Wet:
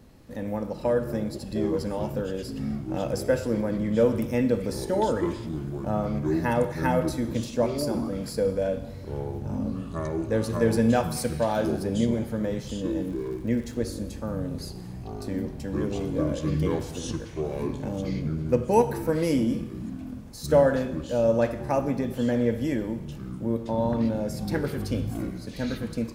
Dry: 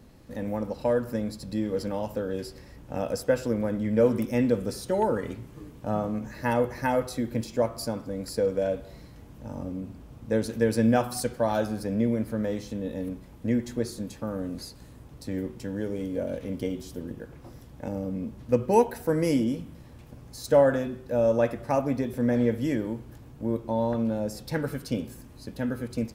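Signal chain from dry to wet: Schroeder reverb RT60 1.1 s, combs from 27 ms, DRR 12 dB; ever faster or slower copies 287 ms, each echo -7 st, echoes 3, each echo -6 dB; 13.07–13.76 s: crackle 150 per s -41 dBFS

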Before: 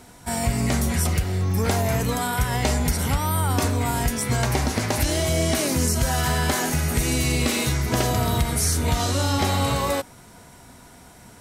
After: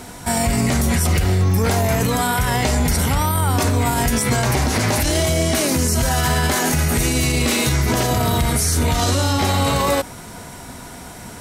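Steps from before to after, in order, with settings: hum notches 60/120 Hz; loudness maximiser +20 dB; trim -8.5 dB

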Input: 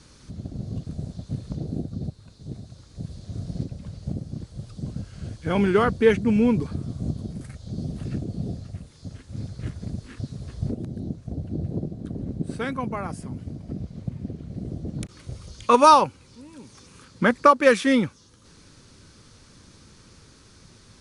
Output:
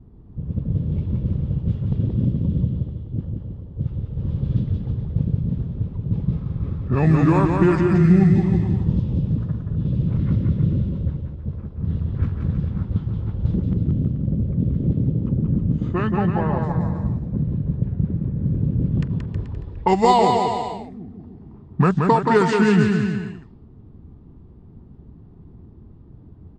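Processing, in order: compression 2:1, threshold -30 dBFS, peak gain reduction 11 dB; level-controlled noise filter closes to 380 Hz, open at -23 dBFS; on a send: bouncing-ball echo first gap 140 ms, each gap 0.8×, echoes 5; on the sum: tape speed -21%; dynamic bell 150 Hz, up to +6 dB, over -40 dBFS, Q 1.2; trim +7 dB

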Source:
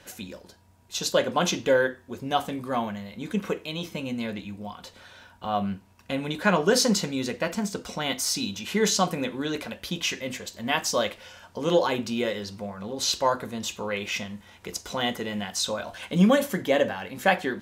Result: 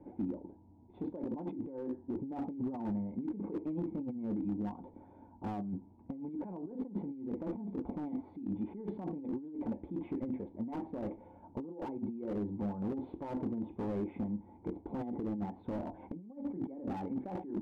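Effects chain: cascade formant filter u; compressor with a negative ratio -44 dBFS, ratio -1; slew-rate limiter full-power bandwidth 4.4 Hz; trim +5.5 dB

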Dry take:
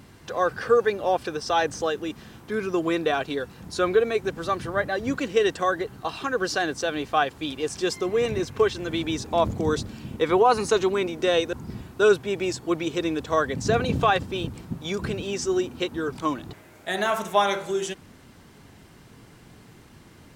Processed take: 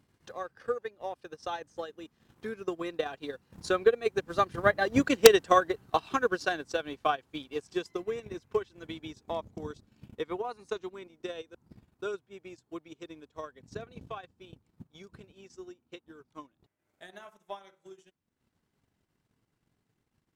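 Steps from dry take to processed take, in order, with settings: Doppler pass-by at 5.29 s, 8 m/s, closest 5 m; integer overflow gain 10 dB; transient shaper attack +9 dB, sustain -11 dB; trim -1.5 dB

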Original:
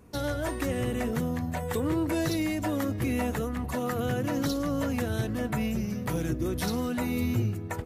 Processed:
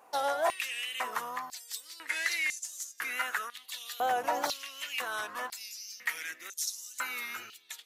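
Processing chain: 2.08–2.93 s: CVSD coder 64 kbps; wow and flutter 72 cents; step-sequenced high-pass 2 Hz 790–6500 Hz

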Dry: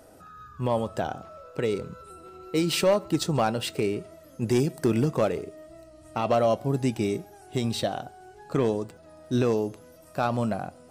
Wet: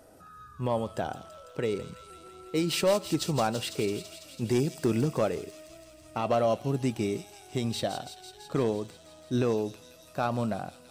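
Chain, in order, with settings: feedback echo behind a high-pass 166 ms, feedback 77%, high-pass 3.8 kHz, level -6 dB; trim -3 dB

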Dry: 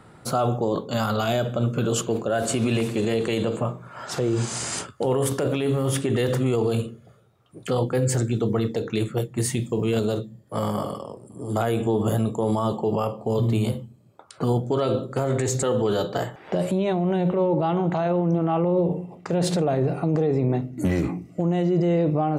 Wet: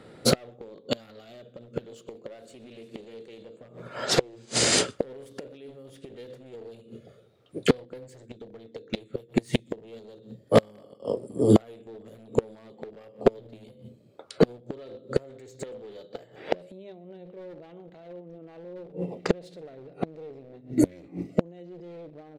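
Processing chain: one-sided wavefolder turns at -19.5 dBFS; graphic EQ 250/500/1000/2000/4000 Hz +5/+12/-5/+5/+9 dB; on a send: delay 124 ms -24 dB; on the sum: inverted gate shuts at -11 dBFS, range -25 dB; upward expansion 1.5:1, over -42 dBFS; trim +6.5 dB

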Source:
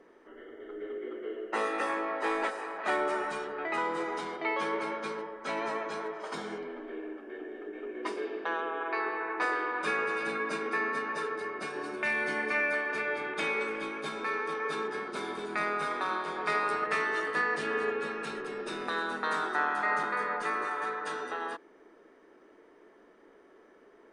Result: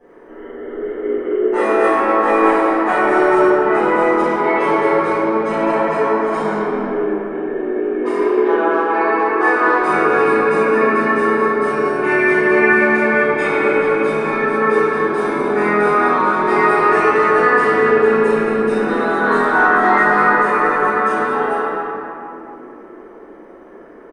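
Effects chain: peaking EQ 4.3 kHz -11.5 dB 2 oct; speakerphone echo 250 ms, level -8 dB; reverberation RT60 2.8 s, pre-delay 7 ms, DRR -16 dB

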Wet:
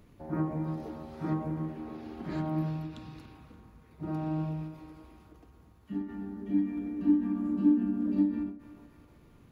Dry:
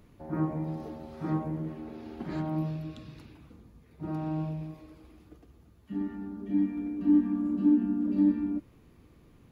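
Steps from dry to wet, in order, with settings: band-passed feedback delay 287 ms, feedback 64%, band-pass 1.2 kHz, level -9.5 dB; endings held to a fixed fall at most 110 dB/s

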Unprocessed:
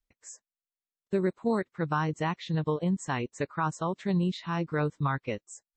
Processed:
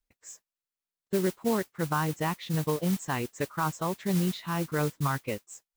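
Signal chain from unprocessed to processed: modulation noise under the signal 14 dB

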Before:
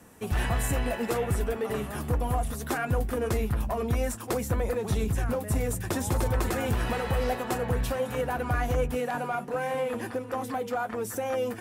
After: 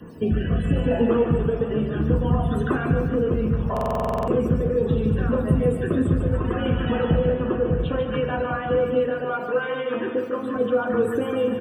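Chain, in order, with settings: 8.42–10.56 s: high-pass 530 Hz 6 dB/octave; reverb removal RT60 1.2 s; resonant high shelf 4 kHz -10 dB, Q 3; compression 8:1, threshold -33 dBFS, peak gain reduction 11 dB; rotary cabinet horn 0.7 Hz; word length cut 10-bit, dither triangular; loudest bins only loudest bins 64; feedback delay 148 ms, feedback 55%, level -7 dB; reverberation RT60 0.45 s, pre-delay 3 ms, DRR 1 dB; buffer glitch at 3.72 s, samples 2048, times 11; trim +5 dB

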